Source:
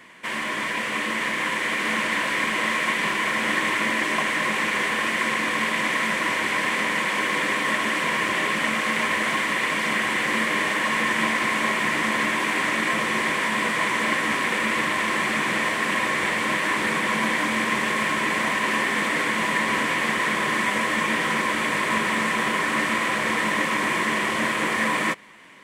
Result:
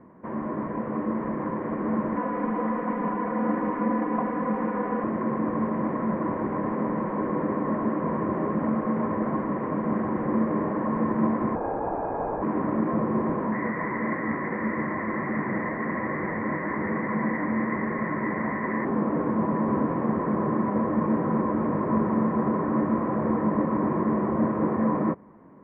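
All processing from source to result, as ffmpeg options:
-filter_complex "[0:a]asettb=1/sr,asplit=3[a][b][c];[a]atrim=end=2.164[d];[b]atrim=start=2.16:end=5.04,asetpts=PTS-STARTPTS,afade=t=in:d=0.004:c=qsin,afade=t=out:st=2.876:d=0.004:c=qsin,lowshelf=f=290:g=-8,aecho=1:1:4.1:0.97,atrim=end_sample=127008[e];[c]atrim=start=5.036[f];[d][e]acrossfade=d=0.004:c1=hsin:c2=qsin[g];[g][f]acrossfade=d=0.004:c1=qsin:c2=hsin,asettb=1/sr,asplit=3[h][i][j];[h]atrim=end=11.554[k];[i]atrim=start=11.55:end=12.42,asetpts=PTS-STARTPTS,afade=t=in:d=0.004:c=qsin,afade=t=out:st=0.866:d=0.004:c=qsin,equalizer=f=390:w=0.42:g=-8,lowpass=f=2.3k:t=q:w=0.5098,lowpass=f=2.3k:t=q:w=0.6013,lowpass=f=2.3k:t=q:w=0.9,lowpass=f=2.3k:t=q:w=2.563,afreqshift=-2700[l];[j]atrim=start=12.416[m];[k][l]acrossfade=d=0.004:c1=hsin:c2=qsin[n];[n][m]acrossfade=d=0.004:c1=qsin:c2=hsin,asettb=1/sr,asplit=3[o][p][q];[o]atrim=end=13.524[r];[p]atrim=start=13.52:end=18.85,asetpts=PTS-STARTPTS,afade=t=in:d=0.004:c=qsin,afade=t=out:st=5.326:d=0.004:c=qsin,flanger=delay=5.2:depth=9.6:regen=-58:speed=1.1:shape=triangular,lowpass=f=2k:t=q:w=13[s];[q]atrim=start=18.846[t];[r][s]acrossfade=d=0.004:c1=hsin:c2=qsin[u];[u][t]acrossfade=d=0.004:c1=qsin:c2=hsin,lowpass=f=1.2k:w=0.5412,lowpass=f=1.2k:w=1.3066,tiltshelf=f=670:g=8.5"

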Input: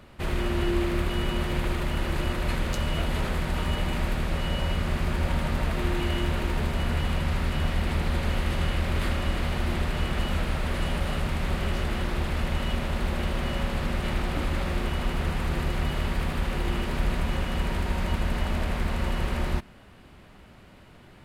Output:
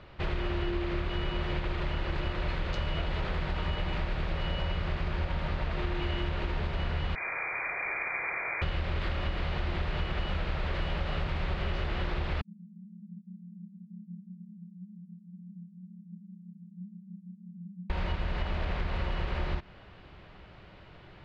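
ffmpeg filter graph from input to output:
-filter_complex "[0:a]asettb=1/sr,asplit=3[a][b][c];[a]atrim=end=7.154[d];[b]atrim=start=7.15:end=8.62,asetpts=PTS-STARTPTS,afade=t=in:d=0.004:c=qsin,afade=t=out:st=1.466:d=0.004:c=qsin,highpass=f=190:w=0.5412,highpass=f=190:w=1.3066,lowpass=f=2.2k:t=q:w=0.5098,lowpass=f=2.2k:t=q:w=0.6013,lowpass=f=2.2k:t=q:w=0.9,lowpass=f=2.2k:t=q:w=2.563,afreqshift=-2600[e];[c]atrim=start=8.616[f];[d][e]acrossfade=d=0.004:c1=hsin:c2=qsin[g];[g][f]acrossfade=d=0.004:c1=qsin:c2=hsin,asettb=1/sr,asplit=3[h][i][j];[h]atrim=end=12.414[k];[i]atrim=start=12.41:end=17.9,asetpts=PTS-STARTPTS,afade=t=in:d=0.004:c=qsin,afade=t=out:st=5.486:d=0.004:c=qsin,flanger=delay=18:depth=7.4:speed=2,asuperpass=centerf=190:order=20:qfactor=4.1[l];[j]atrim=start=17.896[m];[k][l]acrossfade=d=0.004:c1=hsin:c2=qsin[n];[n][m]acrossfade=d=0.004:c1=qsin:c2=hsin,lowpass=f=4.7k:w=0.5412,lowpass=f=4.7k:w=1.3066,equalizer=f=240:w=4.4:g=-11,acompressor=threshold=-27dB:ratio=6"

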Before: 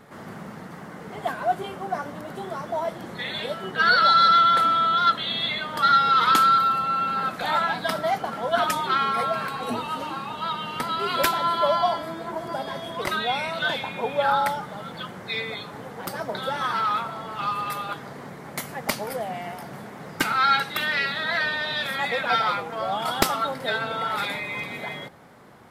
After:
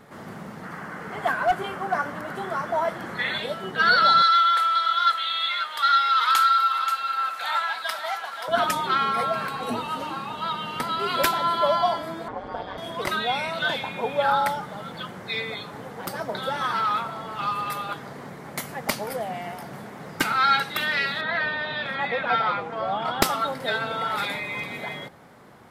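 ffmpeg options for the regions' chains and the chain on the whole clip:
-filter_complex "[0:a]asettb=1/sr,asplit=3[a][b][c];[a]atrim=end=0.634[d];[b]atrim=start=0.63:end=3.38,asetpts=PTS-STARTPTS,afade=t=in:d=0.004:c=qsin,afade=t=out:st=2.746:d=0.004:c=qsin,equalizer=f=1.5k:w=1.1:g=9,asoftclip=type=hard:threshold=-14.5dB,bandreject=f=3.7k:w=21[e];[c]atrim=start=3.376[f];[d][e]acrossfade=d=0.004:c1=hsin:c2=qsin[g];[g][f]acrossfade=d=0.004:c1=qsin:c2=hsin,asettb=1/sr,asplit=3[h][i][j];[h]atrim=end=4.224[k];[i]atrim=start=4.22:end=8.48,asetpts=PTS-STARTPTS,afade=t=in:d=0.004:c=qsin,afade=t=out:st=4.256:d=0.004:c=qsin,highpass=1.1k,aecho=1:1:531:0.355,atrim=end_sample=187866[l];[j]atrim=start=8.476[m];[k][l]acrossfade=d=0.004:c1=hsin:c2=qsin[n];[n][m]acrossfade=d=0.004:c1=qsin:c2=hsin,asettb=1/sr,asplit=3[o][p][q];[o]atrim=end=12.284[r];[p]atrim=start=12.28:end=12.78,asetpts=PTS-STARTPTS,afade=t=in:d=0.004:c=qsin,afade=t=out:st=0.496:d=0.004:c=qsin,lowpass=3.4k,aeval=exprs='val(0)*sin(2*PI*96*n/s)':c=same[s];[q]atrim=start=12.776[t];[r][s]acrossfade=d=0.004:c1=hsin:c2=qsin[u];[u][t]acrossfade=d=0.004:c1=qsin:c2=hsin,asettb=1/sr,asplit=3[v][w][x];[v]atrim=end=21.214[y];[w]atrim=start=21.21:end=23.22,asetpts=PTS-STARTPTS,afade=t=in:d=0.004:c=qsin,afade=t=out:st=2.006:d=0.004:c=qsin,aemphasis=mode=reproduction:type=50fm,acrossover=split=4300[z][aa];[aa]acompressor=threshold=-56dB:ratio=4:attack=1:release=60[ab];[z][ab]amix=inputs=2:normalize=0[ac];[x]atrim=start=23.216[ad];[y][ac]acrossfade=d=0.004:c1=hsin:c2=qsin[ae];[ae][ad]acrossfade=d=0.004:c1=qsin:c2=hsin"

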